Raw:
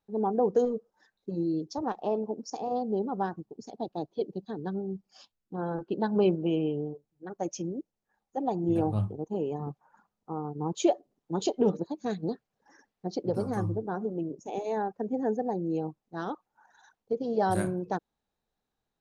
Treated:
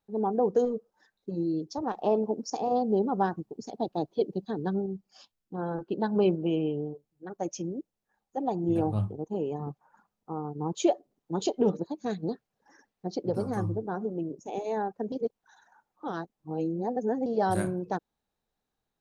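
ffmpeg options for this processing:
-filter_complex "[0:a]asplit=5[a][b][c][d][e];[a]atrim=end=1.932[f];[b]atrim=start=1.928:end=4.862,asetpts=PTS-STARTPTS,volume=4dB[g];[c]atrim=start=4.858:end=15.122[h];[d]atrim=start=15.118:end=17.262,asetpts=PTS-STARTPTS,areverse[i];[e]atrim=start=17.258[j];[f][g]acrossfade=d=0.004:c1=hsin:c2=hsin[k];[k][h]acrossfade=d=0.004:c1=hsin:c2=hsin[l];[l][i]acrossfade=d=0.004:c1=hsin:c2=hsin[m];[m][j]acrossfade=d=0.004:c1=hsin:c2=hsin"

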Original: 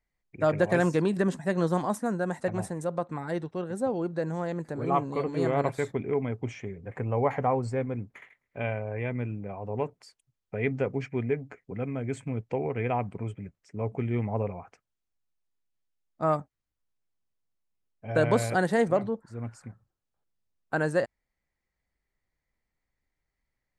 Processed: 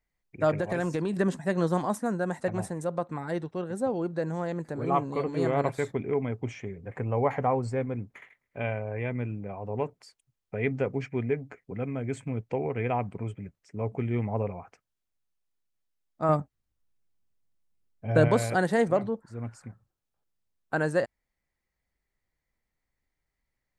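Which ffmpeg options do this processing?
-filter_complex "[0:a]asettb=1/sr,asplit=3[a][b][c];[a]atrim=end=0.564[d];[b]atrim=start=0.56:end=1.14,asetpts=PTS-STARTPTS,afade=t=in:d=0.004:c=qsin,afade=t=out:st=0.576:d=0.004:c=qsin,acompressor=threshold=-25dB:ratio=4:attack=3.2:release=140:knee=1:detection=peak[e];[c]atrim=start=1.136[f];[d][e]acrossfade=d=0.004:c1=hsin:c2=qsin[g];[g][f]acrossfade=d=0.004:c1=qsin:c2=hsin,asettb=1/sr,asplit=3[h][i][j];[h]atrim=end=16.294[k];[i]atrim=start=16.29:end=18.28,asetpts=PTS-STARTPTS,afade=t=in:d=0.004:c=qsin,afade=t=out:st=1.986:d=0.004:c=qsin,lowshelf=f=330:g=7.5[l];[j]atrim=start=18.276[m];[k][l]acrossfade=d=0.004:c1=hsin:c2=qsin[n];[n][m]acrossfade=d=0.004:c1=qsin:c2=hsin"

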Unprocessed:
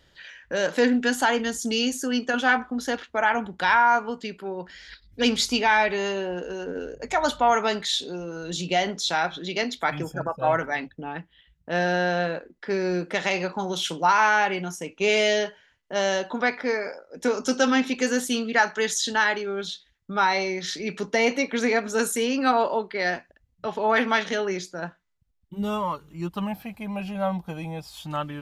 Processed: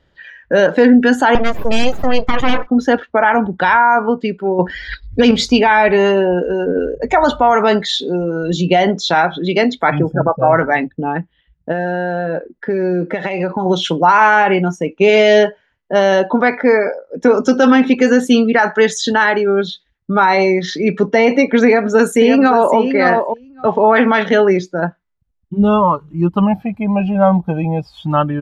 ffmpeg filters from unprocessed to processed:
-filter_complex "[0:a]asettb=1/sr,asplit=3[a][b][c];[a]atrim=end=1.354[d];[b]atrim=start=1.35:end=2.67,asetpts=PTS-STARTPTS,afade=t=in:d=0.004:c=qsin,afade=t=out:st=1.316:d=0.004:c=qsin,aeval=exprs='abs(val(0))':c=same[e];[c]atrim=start=2.666[f];[d][e]acrossfade=d=0.004:c1=hsin:c2=qsin[g];[g][f]acrossfade=d=0.004:c1=qsin:c2=hsin,asettb=1/sr,asplit=3[h][i][j];[h]atrim=end=9.994[k];[i]atrim=start=9.99:end=10.53,asetpts=PTS-STARTPTS,afade=t=in:d=0.004:c=qsin,afade=t=out:st=0.536:d=0.004:c=qsin,highshelf=f=2.1k:g=-8.5[l];[j]atrim=start=10.526[m];[k][l]acrossfade=d=0.004:c1=hsin:c2=qsin[n];[n][m]acrossfade=d=0.004:c1=qsin:c2=hsin,asettb=1/sr,asplit=3[o][p][q];[o]atrim=end=11.714[r];[p]atrim=start=11.71:end=13.66,asetpts=PTS-STARTPTS,afade=t=in:d=0.004:c=qsin,afade=t=out:st=1.946:d=0.004:c=qsin,acompressor=threshold=-28dB:ratio=8:attack=3.2:release=140:knee=1:detection=peak[s];[q]atrim=start=13.656[t];[r][s]acrossfade=d=0.004:c1=hsin:c2=qsin[u];[u][t]acrossfade=d=0.004:c1=qsin:c2=hsin,asplit=2[v][w];[w]afade=t=in:st=21.65:d=0.01,afade=t=out:st=22.77:d=0.01,aecho=0:1:560|1120:0.398107|0.0398107[x];[v][x]amix=inputs=2:normalize=0,asplit=3[y][z][aa];[y]atrim=end=4.592[ab];[z]atrim=start=4.588:end=5.312,asetpts=PTS-STARTPTS,volume=8dB[ac];[aa]atrim=start=5.308[ad];[ab][ac]acrossfade=d=0.004:c1=hsin:c2=hsin[ae];[ae][ad]acrossfade=d=0.004:c1=hsin:c2=hsin,afftdn=nr=13:nf=-37,lowpass=f=1.4k:p=1,alimiter=level_in=17dB:limit=-1dB:release=50:level=0:latency=1,volume=-1dB"

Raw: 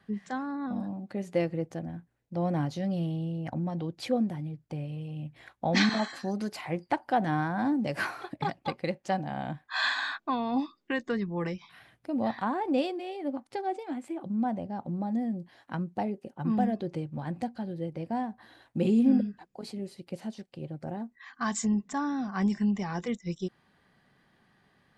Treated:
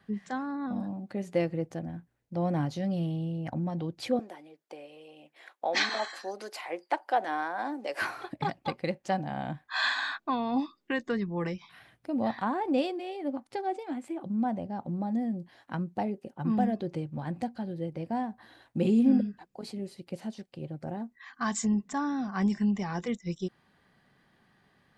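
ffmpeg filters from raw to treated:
-filter_complex "[0:a]asettb=1/sr,asplit=3[a][b][c];[a]atrim=end=4.194[d];[b]atrim=start=4.19:end=8.02,asetpts=PTS-STARTPTS,afade=t=in:d=0.004:c=qsin,afade=t=out:st=3.826:d=0.004:c=qsin,highpass=f=380:w=0.5412,highpass=f=380:w=1.3066[e];[c]atrim=start=8.016[f];[d][e]acrossfade=d=0.004:c1=hsin:c2=qsin[g];[g][f]acrossfade=d=0.004:c1=qsin:c2=hsin"

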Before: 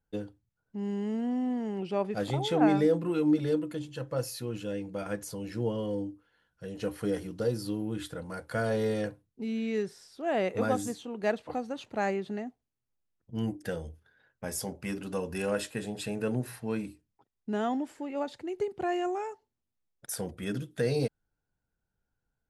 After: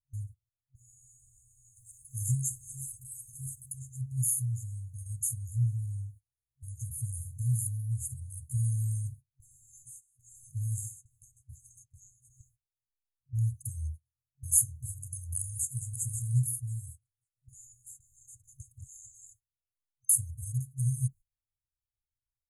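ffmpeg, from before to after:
-filter_complex "[0:a]asplit=3[a][b][c];[a]afade=t=out:st=1.75:d=0.02[d];[b]highshelf=f=5.7k:g=10.5,afade=t=in:st=1.75:d=0.02,afade=t=out:st=3.71:d=0.02[e];[c]afade=t=in:st=3.71:d=0.02[f];[d][e][f]amix=inputs=3:normalize=0,asettb=1/sr,asplit=3[g][h][i];[g]atrim=end=10.784[j];[h]atrim=start=10.78:end=12.41,asetpts=PTS-STARTPTS,afade=t=in:d=0.004:c=qsin,afade=t=out:st=1.626:d=0.004:c=qsin,acrossover=split=430|1600[k][l][m];[k]acompressor=threshold=-39dB:ratio=4[n];[l]acompressor=threshold=-45dB:ratio=4[o];[m]acompressor=threshold=-51dB:ratio=4[p];[n][o][p]amix=inputs=3:normalize=0[q];[i]atrim=start=12.406[r];[j][q]acrossfade=d=0.004:c1=hsin:c2=qsin[s];[s][r]acrossfade=d=0.004:c1=qsin:c2=hsin,asplit=2[t][u];[u]afade=t=in:st=15.39:d=0.01,afade=t=out:st=15.98:d=0.01,aecho=0:1:540|1080|1620:0.473151|0.0709727|0.0106459[v];[t][v]amix=inputs=2:normalize=0,agate=range=-20dB:threshold=-46dB:ratio=16:detection=peak,afftfilt=real='re*(1-between(b*sr/4096,130,6300))':imag='im*(1-between(b*sr/4096,130,6300))':win_size=4096:overlap=0.75,equalizer=f=10k:w=6.4:g=10,volume=9dB"

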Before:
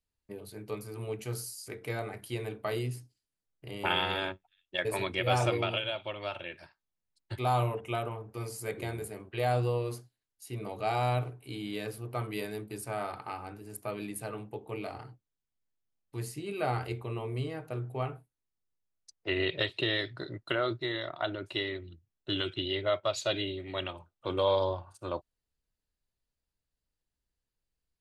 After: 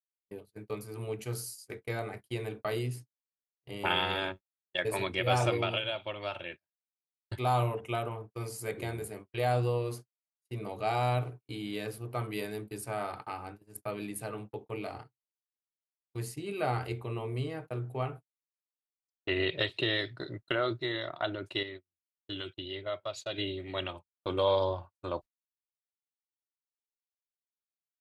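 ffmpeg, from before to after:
-filter_complex "[0:a]asplit=3[a][b][c];[a]atrim=end=21.632[d];[b]atrim=start=21.628:end=23.382,asetpts=PTS-STARTPTS,volume=-7dB[e];[c]atrim=start=23.378[f];[d][e]acrossfade=d=0.004:c1=hsin:c2=hsin[g];[g][f]acrossfade=d=0.004:c1=hsin:c2=hsin,agate=range=-44dB:threshold=-43dB:ratio=16:detection=peak"

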